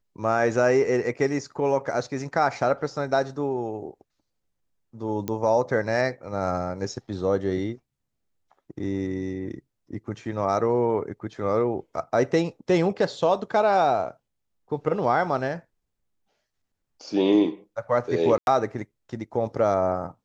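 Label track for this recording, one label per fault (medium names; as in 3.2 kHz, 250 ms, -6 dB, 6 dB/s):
5.280000	5.280000	pop -15 dBFS
18.380000	18.470000	dropout 91 ms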